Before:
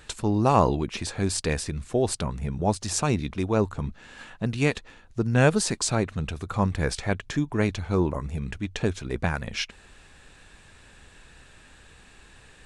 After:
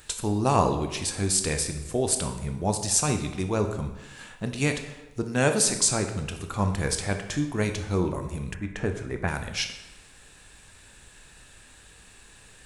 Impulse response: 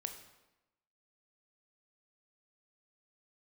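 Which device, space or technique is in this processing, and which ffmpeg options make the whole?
bathroom: -filter_complex "[1:a]atrim=start_sample=2205[a];[0:a][a]afir=irnorm=-1:irlink=0,aemphasis=mode=production:type=50fm,asettb=1/sr,asplit=3[b][c][d];[b]atrim=end=5.234[e];[c]atrim=start=5.23:end=5.67,asetpts=PTS-STARTPTS,afade=t=in:d=0.004:c=qsin,afade=t=out:st=0.436:d=0.004:c=qsin,highpass=160[f];[d]atrim=start=5.666[g];[e][f]acrossfade=d=0.004:c1=hsin:c2=qsin[h];[h][g]acrossfade=d=0.004:c1=qsin:c2=hsin,asettb=1/sr,asplit=3[i][j][k];[i]atrim=end=8.544[l];[j]atrim=start=8.54:end=9.28,asetpts=PTS-STARTPTS,afade=t=in:d=0.004:c=qsin,afade=t=out:st=0.736:d=0.004:c=qsin,highshelf=f=2.6k:t=q:w=1.5:g=-10.5[m];[k]atrim=start=9.276[n];[l][m]acrossfade=d=0.004:c1=hsin:c2=qsin[o];[o][n]acrossfade=d=0.004:c1=qsin:c2=hsin"

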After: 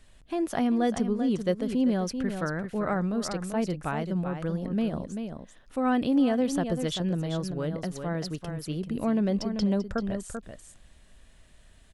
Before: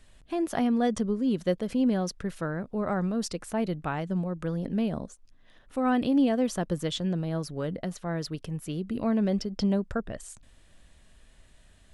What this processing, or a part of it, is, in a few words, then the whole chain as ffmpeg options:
ducked delay: -filter_complex "[0:a]asettb=1/sr,asplit=3[a][b][c];[a]atrim=end=2.214[d];[b]atrim=start=2.21:end=2.95,asetpts=PTS-STARTPTS,afade=t=in:d=0.004:c=qsin,afade=t=out:st=0.736:d=0.004:c=qsin,equalizer=f=2k:t=o:w=1.3:g=5[e];[c]atrim=start=2.946[f];[d][e]acrossfade=d=0.004:c1=hsin:c2=qsin[g];[g][f]acrossfade=d=0.004:c1=qsin:c2=hsin,asplit=3[h][i][j];[i]adelay=389,volume=-7dB[k];[j]apad=whole_len=543403[l];[k][l]sidechaincompress=threshold=-30dB:ratio=8:attack=42:release=101[m];[h][m]amix=inputs=2:normalize=0"

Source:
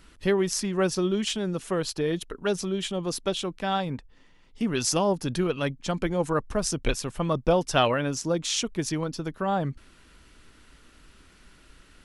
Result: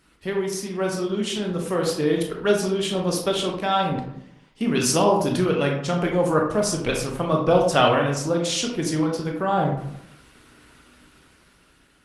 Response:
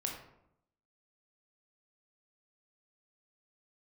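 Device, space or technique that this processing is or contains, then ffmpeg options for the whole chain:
far-field microphone of a smart speaker: -filter_complex "[1:a]atrim=start_sample=2205[a];[0:a][a]afir=irnorm=-1:irlink=0,highpass=f=130:p=1,dynaudnorm=f=580:g=5:m=8dB,volume=-1.5dB" -ar 48000 -c:a libopus -b:a 24k

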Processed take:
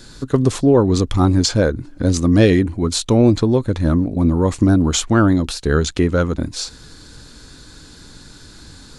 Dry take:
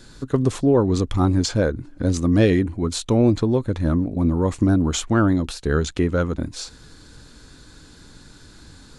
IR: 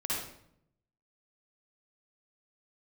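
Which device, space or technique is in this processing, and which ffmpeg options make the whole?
presence and air boost: -af "equalizer=f=4.7k:t=o:w=0.89:g=3,highshelf=f=9.3k:g=4,volume=4dB"

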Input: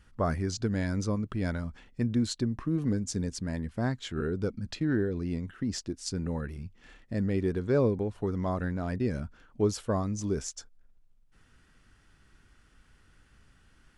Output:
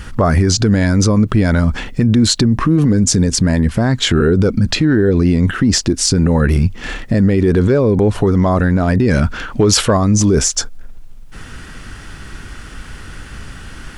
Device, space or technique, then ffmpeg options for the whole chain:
loud club master: -filter_complex "[0:a]acompressor=threshold=-31dB:ratio=2.5,asoftclip=type=hard:threshold=-23dB,alimiter=level_in=33dB:limit=-1dB:release=50:level=0:latency=1,asettb=1/sr,asplit=3[a][b][c];[a]atrim=end=9.084[d];[b]atrim=start=9.08:end=9.97,asetpts=PTS-STARTPTS,afade=t=in:d=0.004:c=qsin,afade=t=out:st=0.886:d=0.004:c=qsin,equalizer=f=2.7k:t=o:w=2.9:g=6[e];[c]atrim=start=9.966[f];[d][e]acrossfade=d=0.004:c1=hsin:c2=qsin[g];[g][f]acrossfade=d=0.004:c1=qsin:c2=hsin,volume=-4dB"

